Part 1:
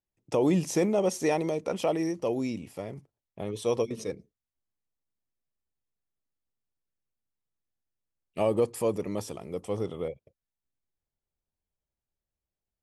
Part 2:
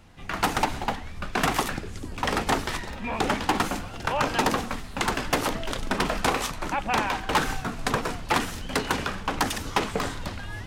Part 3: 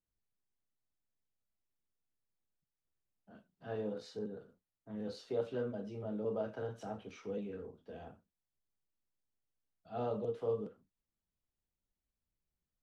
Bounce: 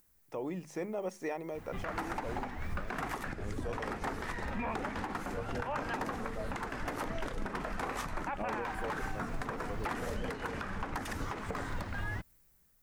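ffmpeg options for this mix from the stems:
-filter_complex "[0:a]equalizer=f=2000:w=0.34:g=6,bandreject=f=50:t=h:w=6,bandreject=f=100:t=h:w=6,bandreject=f=150:t=h:w=6,bandreject=f=200:t=h:w=6,volume=0.158[s0];[1:a]adelay=1550,volume=0.794[s1];[2:a]aemphasis=mode=production:type=75kf,acompressor=mode=upward:threshold=0.00891:ratio=2.5,volume=0.596[s2];[s1][s2]amix=inputs=2:normalize=0,acompressor=threshold=0.0224:ratio=4,volume=1[s3];[s0][s3]amix=inputs=2:normalize=0,highshelf=f=2400:t=q:w=1.5:g=-6.5,dynaudnorm=f=560:g=3:m=1.58,alimiter=level_in=1.33:limit=0.0631:level=0:latency=1:release=224,volume=0.75"

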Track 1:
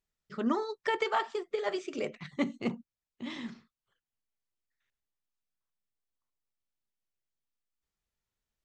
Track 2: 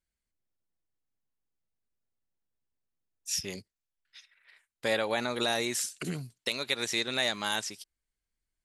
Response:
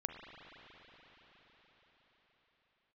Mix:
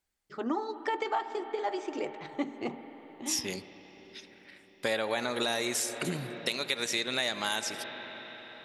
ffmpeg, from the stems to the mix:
-filter_complex "[0:a]equalizer=f=200:t=o:w=0.33:g=-11,equalizer=f=315:t=o:w=0.33:g=10,equalizer=f=800:t=o:w=0.33:g=11,volume=0.668,asplit=2[s0][s1];[s1]volume=0.473[s2];[1:a]volume=1.12,asplit=2[s3][s4];[s4]volume=0.631[s5];[2:a]atrim=start_sample=2205[s6];[s2][s5]amix=inputs=2:normalize=0[s7];[s7][s6]afir=irnorm=-1:irlink=0[s8];[s0][s3][s8]amix=inputs=3:normalize=0,lowshelf=f=140:g=-6.5,acompressor=threshold=0.0355:ratio=2.5"

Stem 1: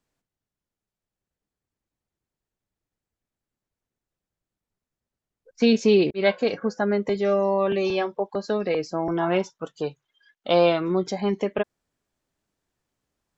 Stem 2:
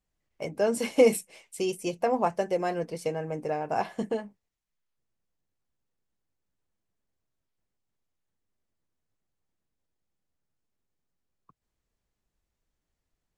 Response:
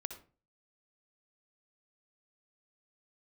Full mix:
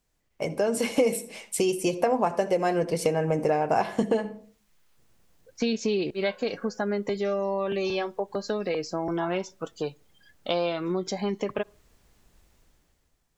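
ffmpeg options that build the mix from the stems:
-filter_complex "[0:a]highshelf=f=4400:g=7,volume=0.841,asplit=2[s0][s1];[s1]volume=0.0708[s2];[1:a]dynaudnorm=f=110:g=13:m=6.31,volume=1.19,asplit=2[s3][s4];[s4]volume=0.668[s5];[2:a]atrim=start_sample=2205[s6];[s2][s5]amix=inputs=2:normalize=0[s7];[s7][s6]afir=irnorm=-1:irlink=0[s8];[s0][s3][s8]amix=inputs=3:normalize=0,acompressor=threshold=0.0562:ratio=3"

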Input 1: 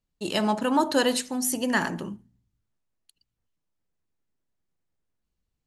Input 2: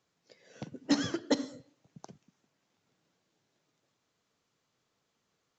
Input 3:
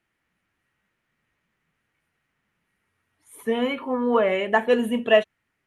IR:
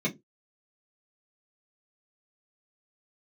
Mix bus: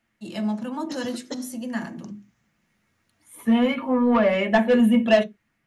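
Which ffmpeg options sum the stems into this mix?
-filter_complex "[0:a]volume=0.316,asplit=2[s0][s1];[s1]volume=0.316[s2];[1:a]highshelf=f=6300:g=10.5,dynaudnorm=f=210:g=13:m=2.82,volume=0.266[s3];[2:a]asoftclip=type=tanh:threshold=0.178,volume=1.33,asplit=2[s4][s5];[s5]volume=0.224[s6];[3:a]atrim=start_sample=2205[s7];[s2][s6]amix=inputs=2:normalize=0[s8];[s8][s7]afir=irnorm=-1:irlink=0[s9];[s0][s3][s4][s9]amix=inputs=4:normalize=0"

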